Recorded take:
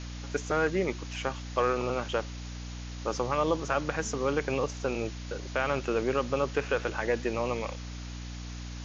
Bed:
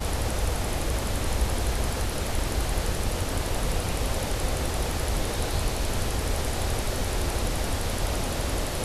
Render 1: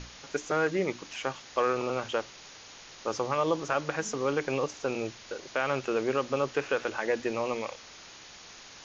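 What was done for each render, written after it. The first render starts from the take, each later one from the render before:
mains-hum notches 60/120/180/240/300 Hz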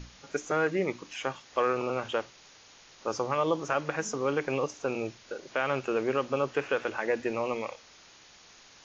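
noise reduction from a noise print 6 dB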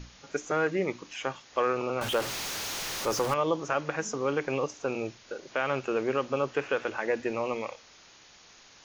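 0:02.01–0:03.34: converter with a step at zero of −29.5 dBFS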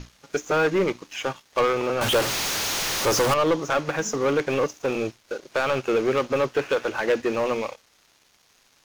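leveller curve on the samples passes 3
expander for the loud parts 1.5 to 1, over −35 dBFS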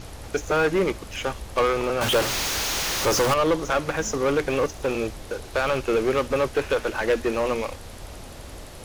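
mix in bed −12 dB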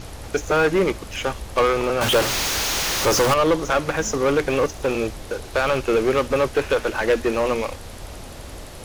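level +3 dB

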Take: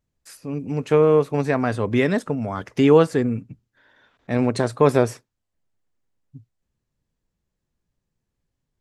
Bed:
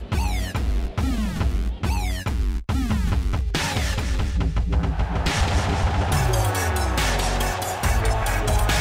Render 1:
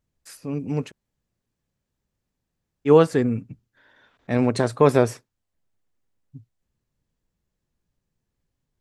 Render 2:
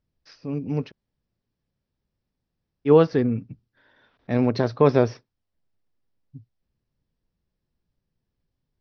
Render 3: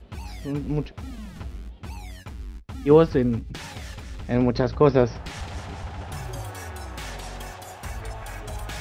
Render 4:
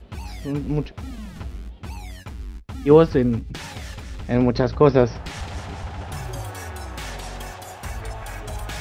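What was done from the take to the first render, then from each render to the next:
0:00.89–0:02.88: fill with room tone, crossfade 0.06 s
Butterworth low-pass 5,700 Hz 96 dB per octave; parametric band 1,900 Hz −3.5 dB 2.8 octaves
mix in bed −13.5 dB
level +2.5 dB

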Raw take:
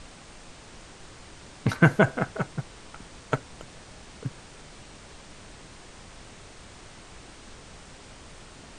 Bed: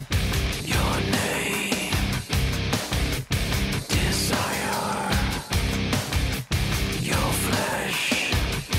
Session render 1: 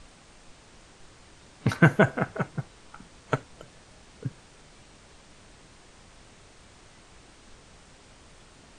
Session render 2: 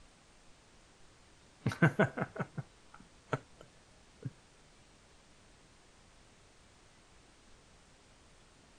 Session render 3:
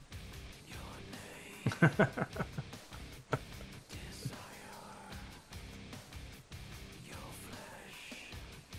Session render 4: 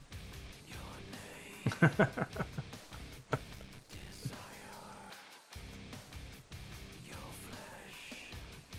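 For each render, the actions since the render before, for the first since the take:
noise reduction from a noise print 6 dB
level −9 dB
mix in bed −25 dB
0:03.54–0:04.24: gain on one half-wave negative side −7 dB; 0:05.10–0:05.56: high-pass filter 470 Hz

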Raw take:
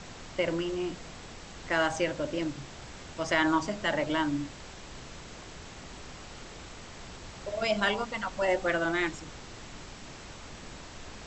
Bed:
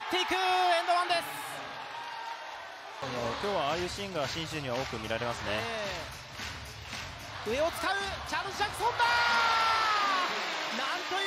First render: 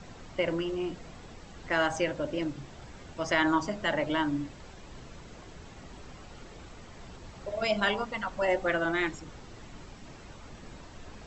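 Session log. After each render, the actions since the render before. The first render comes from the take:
broadband denoise 8 dB, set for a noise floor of −46 dBFS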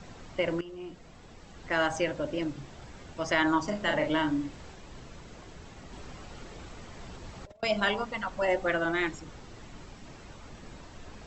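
0:00.61–0:01.84: fade in, from −12.5 dB
0:03.64–0:04.76: double-tracking delay 39 ms −5.5 dB
0:05.92–0:07.63: compressor whose output falls as the input rises −42 dBFS, ratio −0.5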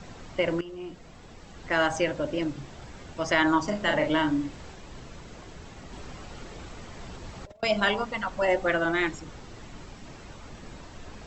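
level +3 dB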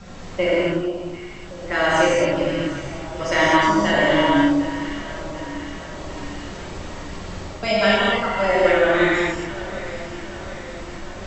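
delay that swaps between a low-pass and a high-pass 373 ms, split 1,100 Hz, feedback 77%, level −12 dB
reverb whose tail is shaped and stops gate 290 ms flat, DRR −7.5 dB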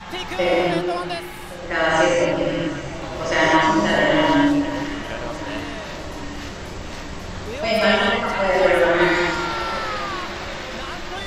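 mix in bed 0 dB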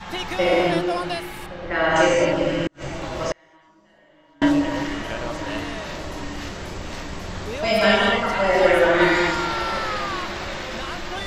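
0:01.46–0:01.96: high-frequency loss of the air 190 metres
0:02.64–0:04.42: gate with flip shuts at −13 dBFS, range −38 dB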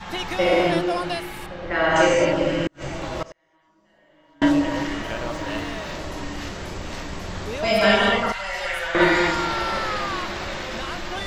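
0:03.23–0:04.44: fade in, from −21.5 dB
0:05.02–0:05.92: running median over 3 samples
0:08.32–0:08.95: guitar amp tone stack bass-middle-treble 10-0-10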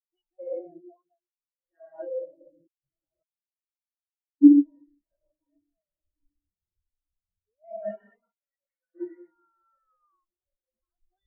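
speech leveller within 4 dB 2 s
every bin expanded away from the loudest bin 4 to 1

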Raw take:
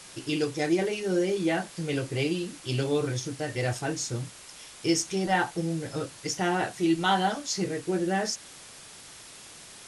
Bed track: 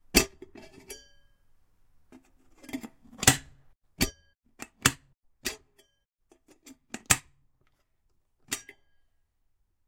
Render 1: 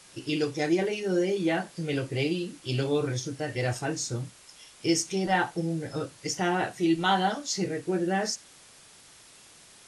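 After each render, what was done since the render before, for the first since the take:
noise reduction from a noise print 6 dB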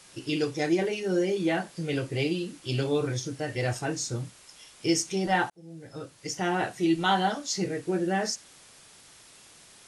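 0:05.50–0:06.61: fade in linear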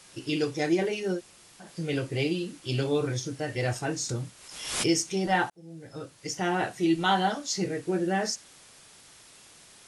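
0:01.16–0:01.64: fill with room tone, crossfade 0.10 s
0:04.09–0:04.90: background raised ahead of every attack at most 59 dB per second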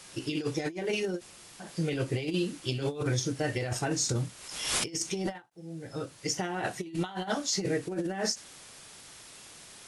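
compressor whose output falls as the input rises −30 dBFS, ratio −0.5
every ending faded ahead of time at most 280 dB per second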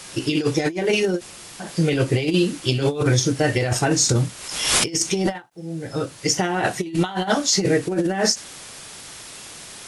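level +11 dB

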